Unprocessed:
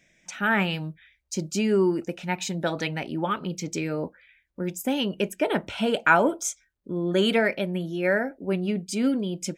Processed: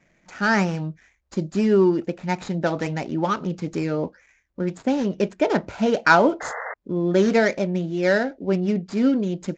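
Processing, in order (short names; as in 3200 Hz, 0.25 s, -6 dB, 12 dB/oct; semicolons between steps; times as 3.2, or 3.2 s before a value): median filter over 15 samples; painted sound noise, 6.4–6.74, 420–2100 Hz -36 dBFS; gain +4.5 dB; Vorbis 96 kbps 16000 Hz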